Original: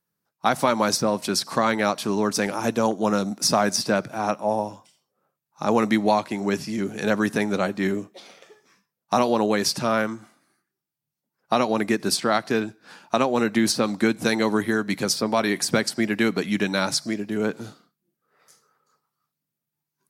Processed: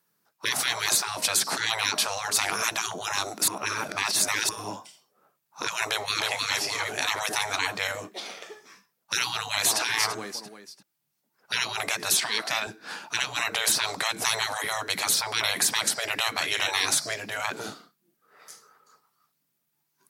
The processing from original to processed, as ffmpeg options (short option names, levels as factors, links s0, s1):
-filter_complex "[0:a]asplit=2[s0][s1];[s1]afade=t=in:st=5.84:d=0.01,afade=t=out:st=6.28:d=0.01,aecho=0:1:310|620|930|1240|1550|1860:0.794328|0.357448|0.160851|0.0723832|0.0325724|0.0146576[s2];[s0][s2]amix=inputs=2:normalize=0,asplit=2[s3][s4];[s4]afade=t=in:st=9.32:d=0.01,afade=t=out:st=9.8:d=0.01,aecho=0:1:340|680|1020:0.298538|0.0895615|0.0268684[s5];[s3][s5]amix=inputs=2:normalize=0,asettb=1/sr,asplit=3[s6][s7][s8];[s6]atrim=end=12.174[s9];[s7]atrim=start=12.17:end=12.67,asetpts=PTS-STARTPTS,afade=t=in:d=0.004:c=qsin,afade=t=out:st=0.496:d=0.004:c=qsin,highpass=300[s10];[s8]atrim=start=12.666[s11];[s9][s10]acrossfade=d=0.004:c1=hsin:c2=qsin[s12];[s12][s11]acrossfade=d=0.004:c1=qsin:c2=hsin,asettb=1/sr,asplit=3[s13][s14][s15];[s13]atrim=end=16.324[s16];[s14]atrim=start=16.32:end=16.85,asetpts=PTS-STARTPTS,afade=t=in:d=0.004:c=qsin,afade=t=out:st=0.526:d=0.004:c=qsin,asplit=2[s17][s18];[s18]adelay=37,volume=0.316[s19];[s17][s19]amix=inputs=2:normalize=0,atrim=end_sample=23373[s20];[s15]atrim=start=16.846[s21];[s16][s20]acrossfade=d=0.004:c1=hsin:c2=qsin[s22];[s22][s21]acrossfade=d=0.004:c1=qsin:c2=hsin,asplit=3[s23][s24][s25];[s23]atrim=end=3.482[s26];[s24]atrim=start=3.478:end=4.492,asetpts=PTS-STARTPTS,areverse[s27];[s25]atrim=start=4.488[s28];[s26][s27]acrossfade=d=0.004:c1=hsin:c2=hsin[s29];[s29][s28]acrossfade=d=0.004:c1=hsin:c2=hsin,afftfilt=real='re*lt(hypot(re,im),0.0891)':imag='im*lt(hypot(re,im),0.0891)':win_size=1024:overlap=0.75,highpass=f=350:p=1,bandreject=f=530:w=14,volume=2.82"